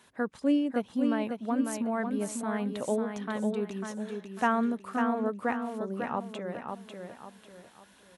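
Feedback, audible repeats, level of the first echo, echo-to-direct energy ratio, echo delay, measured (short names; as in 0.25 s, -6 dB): 36%, 4, -5.5 dB, -5.0 dB, 0.547 s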